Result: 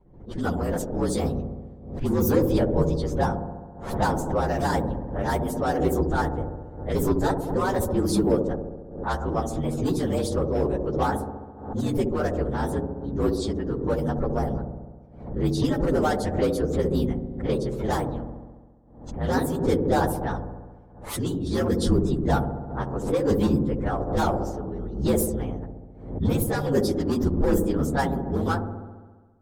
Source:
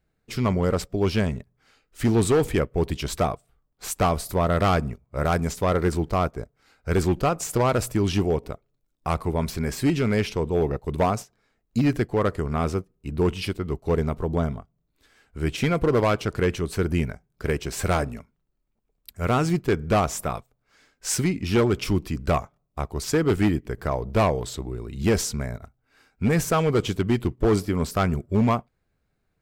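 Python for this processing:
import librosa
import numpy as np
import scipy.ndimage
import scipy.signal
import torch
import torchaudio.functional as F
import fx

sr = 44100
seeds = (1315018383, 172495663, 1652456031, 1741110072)

p1 = fx.partial_stretch(x, sr, pct=117)
p2 = fx.notch(p1, sr, hz=650.0, q=12.0)
p3 = fx.env_lowpass(p2, sr, base_hz=1100.0, full_db=-20.5)
p4 = fx.peak_eq(p3, sr, hz=2400.0, db=-14.0, octaves=1.4)
p5 = fx.hum_notches(p4, sr, base_hz=60, count=7)
p6 = 10.0 ** (-29.0 / 20.0) * np.tanh(p5 / 10.0 ** (-29.0 / 20.0))
p7 = p5 + (p6 * librosa.db_to_amplitude(-7.0))
p8 = fx.hpss(p7, sr, part='harmonic', gain_db=-17)
p9 = fx.echo_wet_lowpass(p8, sr, ms=68, feedback_pct=71, hz=620.0, wet_db=-4.0)
p10 = fx.pre_swell(p9, sr, db_per_s=84.0)
y = p10 * librosa.db_to_amplitude(6.0)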